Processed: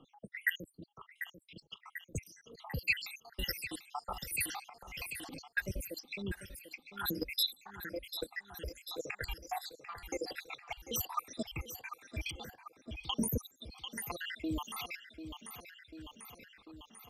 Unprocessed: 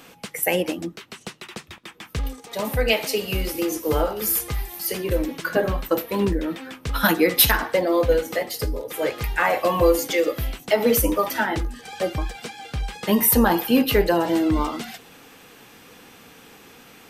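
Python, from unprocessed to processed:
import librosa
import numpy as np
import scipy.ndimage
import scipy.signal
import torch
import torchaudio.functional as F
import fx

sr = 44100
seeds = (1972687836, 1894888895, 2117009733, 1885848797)

y = fx.spec_dropout(x, sr, seeds[0], share_pct=84)
y = fx.level_steps(y, sr, step_db=16)
y = fx.phaser_stages(y, sr, stages=2, low_hz=200.0, high_hz=2000.0, hz=1.6, feedback_pct=45)
y = fx.env_lowpass(y, sr, base_hz=920.0, full_db=-34.5)
y = fx.low_shelf(y, sr, hz=460.0, db=-9.5)
y = fx.echo_feedback(y, sr, ms=743, feedback_pct=56, wet_db=-15)
y = fx.transient(y, sr, attack_db=-10, sustain_db=12, at=(4.21, 5.38), fade=0.02)
y = fx.tilt_shelf(y, sr, db=7.0, hz=930.0, at=(12.31, 13.76))
y = fx.band_squash(y, sr, depth_pct=40)
y = y * 10.0 ** (5.5 / 20.0)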